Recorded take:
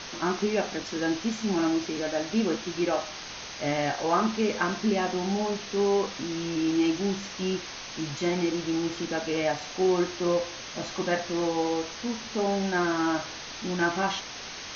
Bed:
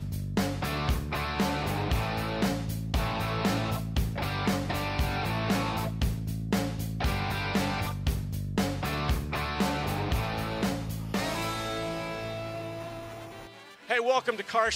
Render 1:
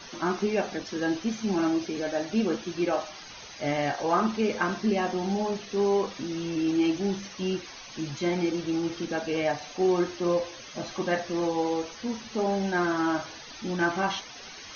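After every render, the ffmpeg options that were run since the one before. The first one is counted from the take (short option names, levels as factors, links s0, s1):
-af "afftdn=nr=13:nf=-40"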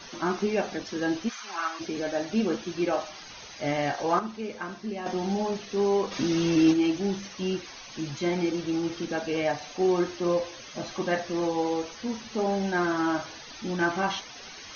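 -filter_complex "[0:a]asplit=3[s0][s1][s2];[s0]afade=t=out:st=1.28:d=0.02[s3];[s1]highpass=f=1200:t=q:w=2.5,afade=t=in:st=1.28:d=0.02,afade=t=out:st=1.79:d=0.02[s4];[s2]afade=t=in:st=1.79:d=0.02[s5];[s3][s4][s5]amix=inputs=3:normalize=0,asplit=3[s6][s7][s8];[s6]afade=t=out:st=6.11:d=0.02[s9];[s7]acontrast=85,afade=t=in:st=6.11:d=0.02,afade=t=out:st=6.72:d=0.02[s10];[s8]afade=t=in:st=6.72:d=0.02[s11];[s9][s10][s11]amix=inputs=3:normalize=0,asplit=3[s12][s13][s14];[s12]atrim=end=4.192[s15];[s13]atrim=start=4.188:end=5.062,asetpts=PTS-STARTPTS,volume=0.376[s16];[s14]atrim=start=5.058[s17];[s15][s16]acrossfade=d=0.004:c1=hsin:c2=hsin[s18];[s18][s17]acrossfade=d=0.004:c1=hsin:c2=hsin"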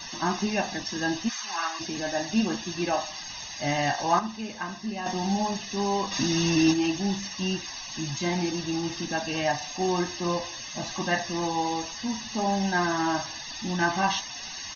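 -af "highshelf=f=4000:g=9.5,aecho=1:1:1.1:0.68"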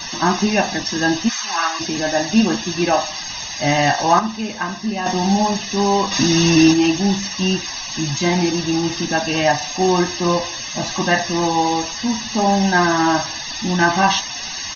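-af "volume=3.16,alimiter=limit=0.708:level=0:latency=1"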